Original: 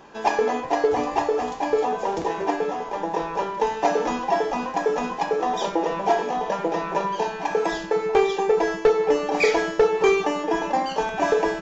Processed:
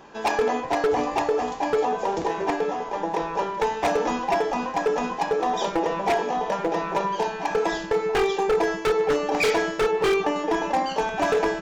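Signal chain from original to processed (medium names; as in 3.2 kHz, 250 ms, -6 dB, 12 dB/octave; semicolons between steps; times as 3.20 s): 9.91–10.36 s: treble shelf 5.5 kHz -9 dB; wavefolder -15 dBFS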